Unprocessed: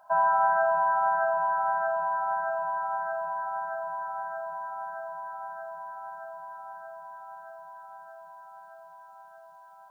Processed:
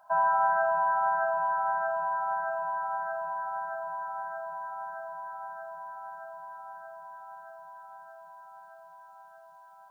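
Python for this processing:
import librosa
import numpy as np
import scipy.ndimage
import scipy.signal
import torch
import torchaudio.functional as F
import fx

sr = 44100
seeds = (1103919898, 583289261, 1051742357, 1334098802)

y = fx.peak_eq(x, sr, hz=400.0, db=-10.5, octaves=0.59)
y = F.gain(torch.from_numpy(y), -1.0).numpy()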